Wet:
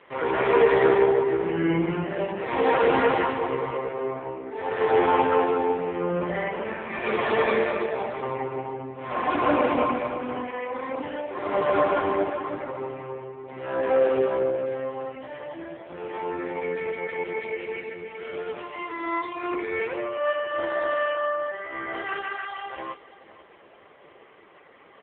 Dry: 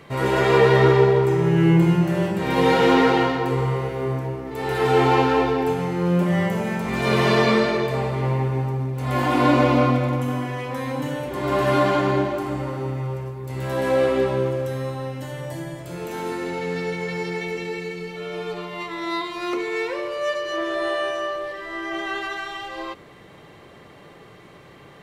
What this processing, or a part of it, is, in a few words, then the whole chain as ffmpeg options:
satellite phone: -af "highpass=370,lowpass=3200,aecho=1:1:488:0.141,volume=1.12" -ar 8000 -c:a libopencore_amrnb -b:a 5150

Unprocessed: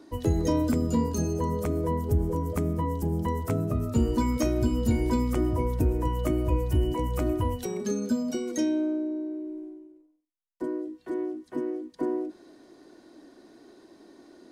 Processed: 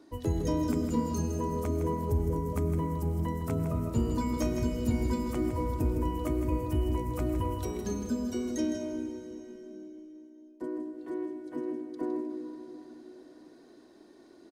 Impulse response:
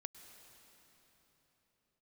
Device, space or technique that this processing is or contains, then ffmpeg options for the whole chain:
cave: -filter_complex "[0:a]aecho=1:1:160:0.376[s0];[1:a]atrim=start_sample=2205[s1];[s0][s1]afir=irnorm=-1:irlink=0"

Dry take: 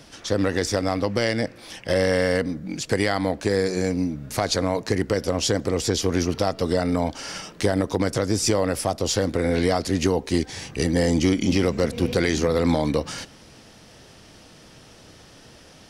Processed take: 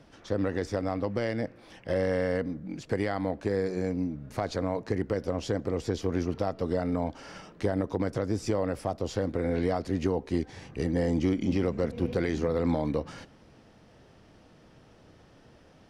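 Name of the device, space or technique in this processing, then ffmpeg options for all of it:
through cloth: -af "highshelf=f=3000:g=-16,volume=0.501"

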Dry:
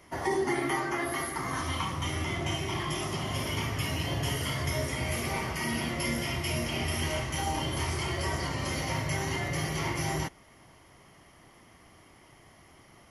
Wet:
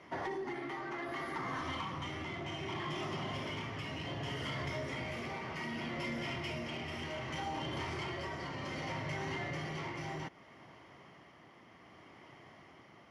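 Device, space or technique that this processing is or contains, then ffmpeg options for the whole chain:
AM radio: -af "highpass=130,lowpass=3600,acompressor=threshold=0.0178:ratio=6,asoftclip=type=tanh:threshold=0.0237,tremolo=f=0.65:d=0.29,volume=1.19"

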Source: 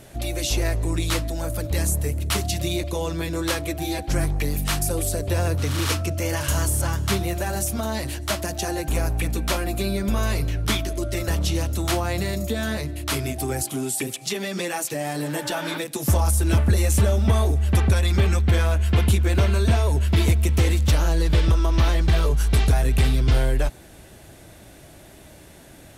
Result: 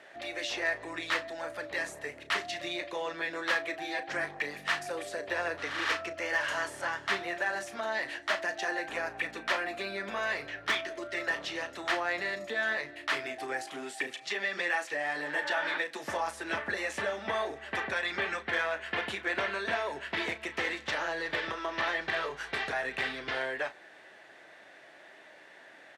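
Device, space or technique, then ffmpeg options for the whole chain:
megaphone: -filter_complex "[0:a]highpass=580,lowpass=3300,equalizer=f=1800:t=o:w=0.34:g=10.5,asoftclip=type=hard:threshold=0.133,asplit=2[s0][s1];[s1]adelay=35,volume=0.251[s2];[s0][s2]amix=inputs=2:normalize=0,volume=0.668"

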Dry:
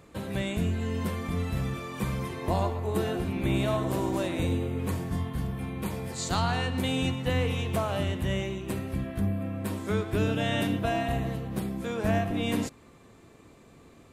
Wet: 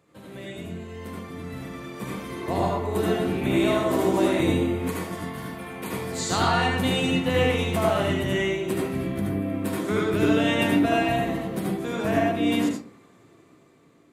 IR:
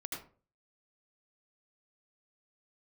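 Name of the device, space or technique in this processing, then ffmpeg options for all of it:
far laptop microphone: -filter_complex "[0:a]asettb=1/sr,asplit=3[s0][s1][s2];[s0]atrim=end=4.804[s3];[s1]atrim=start=4.8:end=5.93,asetpts=PTS-STARTPTS,afade=t=in:d=0.004:c=qsin,afade=t=out:st=1.126:d=0.004:c=qsin,lowshelf=f=320:g=-10[s4];[s2]atrim=start=5.926[s5];[s3][s4]acrossfade=d=0.004:c1=hsin:c2=qsin[s6];[s6][s5]acrossfade=d=0.004:c1=qsin:c2=hsin[s7];[1:a]atrim=start_sample=2205[s8];[s7][s8]afir=irnorm=-1:irlink=0,highpass=120,dynaudnorm=f=690:g=7:m=4.47,volume=0.562"

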